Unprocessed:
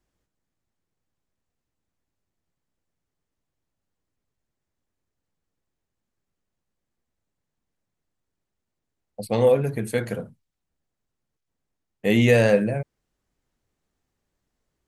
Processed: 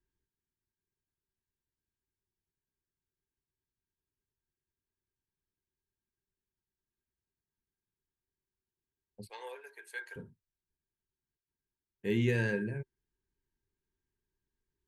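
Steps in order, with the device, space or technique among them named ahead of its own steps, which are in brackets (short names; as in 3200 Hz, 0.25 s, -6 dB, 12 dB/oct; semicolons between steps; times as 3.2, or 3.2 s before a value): 9.29–10.16 inverse Chebyshev high-pass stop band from 190 Hz, stop band 60 dB; passive tone stack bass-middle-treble 6-0-2; inside a helmet (high shelf 6000 Hz -10 dB; small resonant body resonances 390/920/1600 Hz, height 17 dB, ringing for 50 ms); gain +4 dB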